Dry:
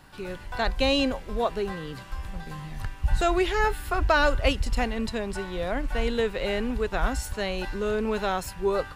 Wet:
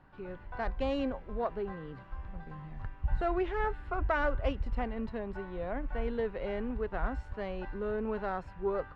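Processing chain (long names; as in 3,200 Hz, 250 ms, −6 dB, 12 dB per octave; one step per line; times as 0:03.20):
phase distortion by the signal itself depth 0.13 ms
low-pass filter 1,600 Hz 12 dB per octave
level −7 dB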